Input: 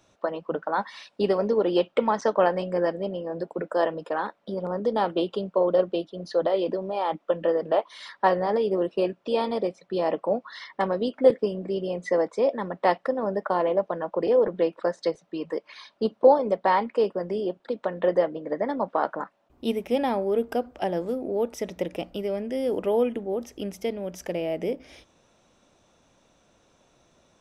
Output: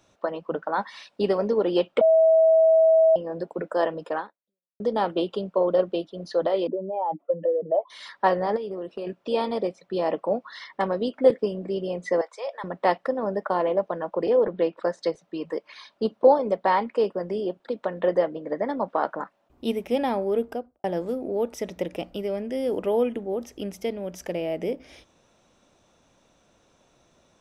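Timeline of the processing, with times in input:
2.01–3.16 s: bleep 646 Hz -13.5 dBFS
4.18–4.80 s: fade out exponential
6.67–7.90 s: spectral contrast enhancement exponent 2
8.56–9.07 s: compression, threshold -29 dBFS
12.21–12.64 s: Bessel high-pass 900 Hz, order 6
14.30–14.77 s: low-pass 5 kHz 24 dB/octave
20.35–20.84 s: studio fade out

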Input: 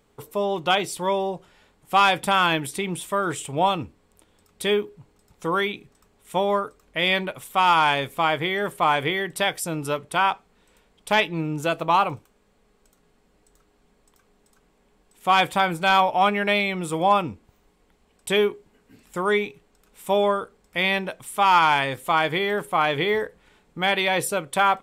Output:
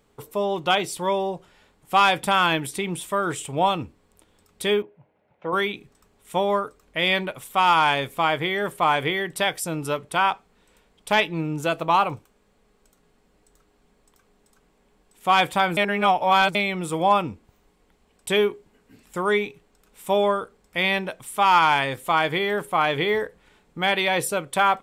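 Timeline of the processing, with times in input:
4.82–5.53 s: cabinet simulation 170–2400 Hz, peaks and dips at 190 Hz -5 dB, 270 Hz -9 dB, 410 Hz -7 dB, 600 Hz +7 dB, 1.2 kHz -9 dB, 1.8 kHz -3 dB
15.77–16.55 s: reverse

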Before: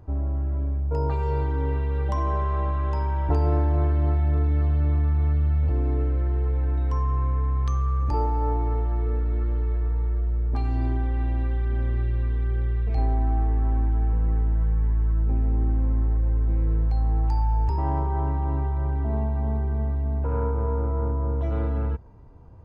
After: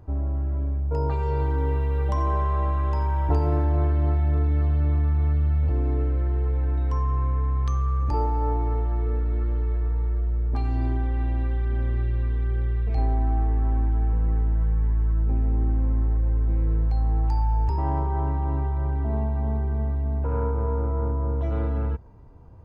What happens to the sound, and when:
1.31–3.64 s: bit-crushed delay 88 ms, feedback 35%, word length 9-bit, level -15 dB

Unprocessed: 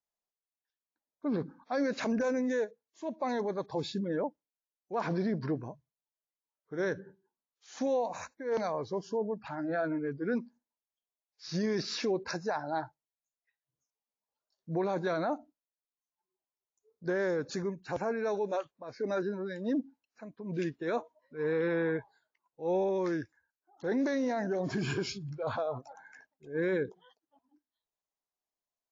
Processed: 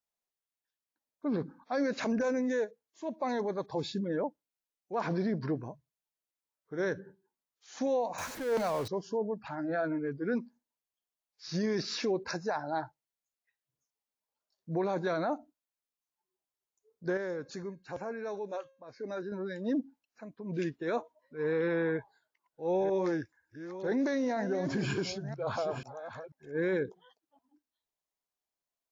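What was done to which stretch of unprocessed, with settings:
8.18–8.88 s: jump at every zero crossing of -37 dBFS
17.17–19.32 s: feedback comb 540 Hz, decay 0.45 s, mix 50%
21.92–26.82 s: chunks repeated in reverse 489 ms, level -10.5 dB

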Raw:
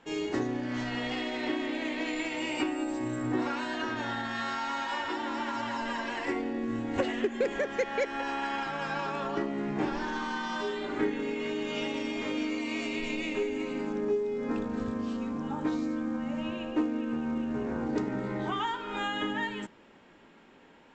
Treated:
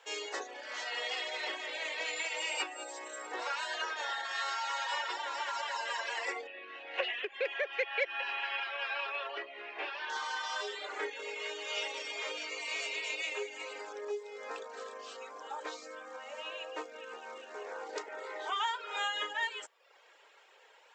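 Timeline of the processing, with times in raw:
6.47–10.10 s: cabinet simulation 120–3700 Hz, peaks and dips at 250 Hz -5 dB, 470 Hz -6 dB, 870 Hz -6 dB, 1.3 kHz -4 dB, 2.6 kHz +8 dB
whole clip: reverb removal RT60 0.7 s; elliptic high-pass 460 Hz, stop band 80 dB; treble shelf 2.8 kHz +10.5 dB; trim -2 dB

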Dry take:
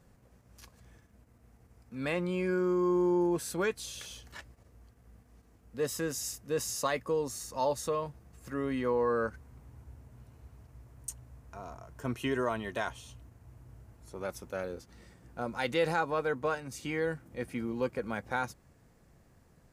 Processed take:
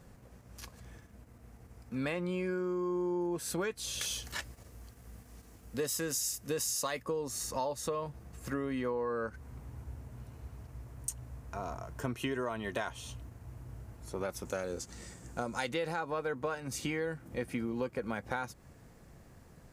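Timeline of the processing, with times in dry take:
4.01–7.03 s: treble shelf 3.1 kHz +8.5 dB
14.45–15.69 s: peaking EQ 7.3 kHz +13.5 dB 0.82 oct
whole clip: compression, threshold -38 dBFS; trim +6 dB

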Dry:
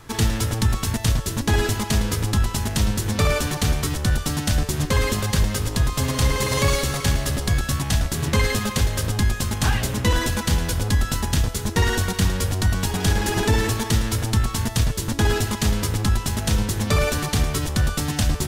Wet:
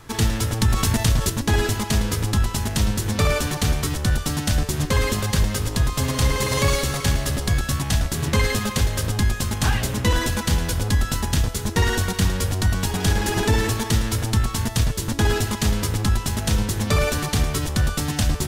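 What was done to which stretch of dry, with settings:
0.61–1.30 s: level flattener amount 50%

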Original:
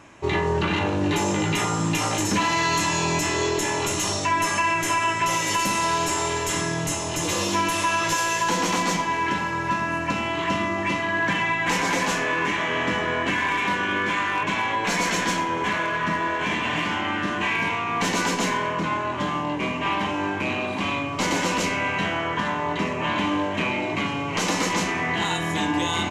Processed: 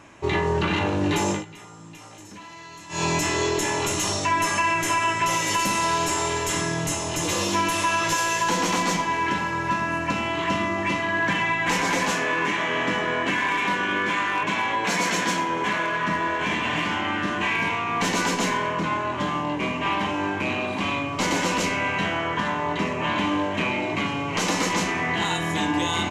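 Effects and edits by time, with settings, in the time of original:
1.31–3.03 s: dip -20 dB, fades 0.14 s
12.10–16.10 s: high-pass 120 Hz

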